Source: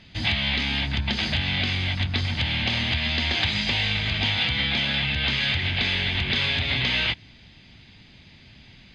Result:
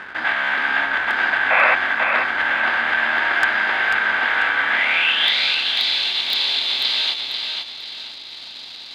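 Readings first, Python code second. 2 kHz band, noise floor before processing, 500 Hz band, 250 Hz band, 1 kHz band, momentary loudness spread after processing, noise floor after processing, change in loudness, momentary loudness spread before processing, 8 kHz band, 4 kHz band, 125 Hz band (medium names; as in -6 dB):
+10.0 dB, -51 dBFS, +7.5 dB, -8.5 dB, +13.5 dB, 15 LU, -36 dBFS, +5.5 dB, 3 LU, no reading, +3.5 dB, under -20 dB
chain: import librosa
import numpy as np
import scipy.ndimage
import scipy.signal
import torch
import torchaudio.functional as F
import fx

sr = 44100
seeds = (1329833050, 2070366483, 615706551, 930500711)

p1 = fx.bin_compress(x, sr, power=0.6)
p2 = fx.band_shelf(p1, sr, hz=580.0, db=15.0, octaves=2.8)
p3 = fx.schmitt(p2, sr, flips_db=-26.0)
p4 = p2 + (p3 * 10.0 ** (-9.0 / 20.0))
p5 = fx.filter_sweep_bandpass(p4, sr, from_hz=1600.0, to_hz=4100.0, start_s=4.66, end_s=5.4, q=6.2)
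p6 = 10.0 ** (-15.5 / 20.0) * (np.abs((p5 / 10.0 ** (-15.5 / 20.0) + 3.0) % 4.0 - 2.0) - 1.0)
p7 = fx.spec_paint(p6, sr, seeds[0], shape='noise', start_s=1.5, length_s=0.25, low_hz=490.0, high_hz=2700.0, level_db=-24.0)
p8 = fx.echo_feedback(p7, sr, ms=492, feedback_pct=34, wet_db=-5)
y = p8 * 10.0 ** (8.0 / 20.0)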